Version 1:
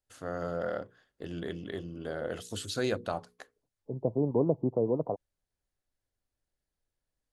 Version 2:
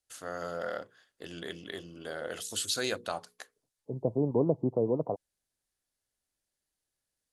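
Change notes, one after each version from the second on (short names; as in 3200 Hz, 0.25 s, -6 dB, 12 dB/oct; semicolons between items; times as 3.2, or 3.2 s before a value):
first voice: add tilt +3 dB/oct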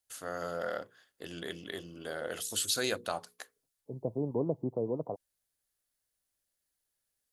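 second voice -5.0 dB; master: remove LPF 9800 Hz 12 dB/oct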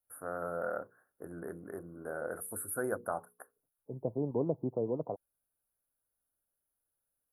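master: add Chebyshev band-stop 1500–9800 Hz, order 4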